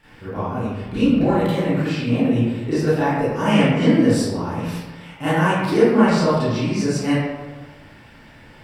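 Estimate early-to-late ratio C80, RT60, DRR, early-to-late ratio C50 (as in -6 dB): 0.5 dB, 1.3 s, -14.0 dB, -4.5 dB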